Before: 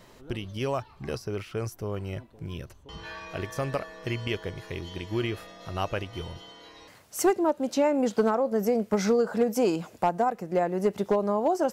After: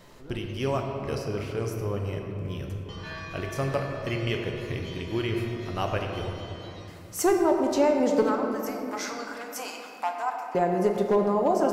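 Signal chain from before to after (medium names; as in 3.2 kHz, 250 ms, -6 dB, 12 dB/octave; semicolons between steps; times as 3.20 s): 8.22–10.55 s: high-pass 860 Hz 24 dB/octave; reverberation RT60 3.0 s, pre-delay 7 ms, DRR 2 dB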